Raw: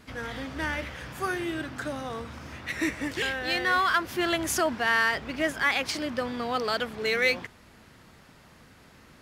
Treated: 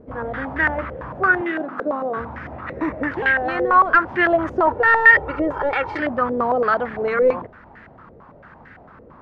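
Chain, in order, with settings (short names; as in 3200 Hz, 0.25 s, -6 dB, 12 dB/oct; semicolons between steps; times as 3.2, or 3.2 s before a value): one-sided fold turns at -21.5 dBFS; 4.67–6 comb 2.2 ms, depth 96%; in parallel at 0 dB: limiter -20.5 dBFS, peak gain reduction 10 dB; 1.41–2.17 on the sum: elliptic high-pass 170 Hz; stepped low-pass 8.9 Hz 510–1800 Hz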